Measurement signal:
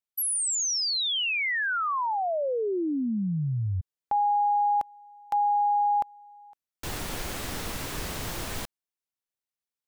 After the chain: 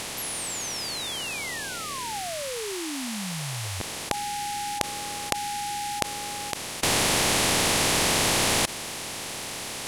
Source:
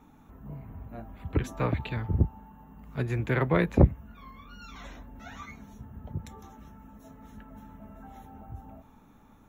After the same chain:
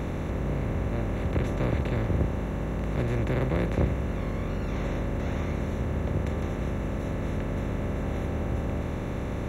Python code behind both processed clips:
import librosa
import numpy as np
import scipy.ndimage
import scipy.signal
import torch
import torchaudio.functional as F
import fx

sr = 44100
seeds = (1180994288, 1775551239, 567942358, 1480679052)

y = fx.bin_compress(x, sr, power=0.2)
y = fx.peak_eq(y, sr, hz=1400.0, db=-5.5, octaves=0.62)
y = y * librosa.db_to_amplitude(-9.0)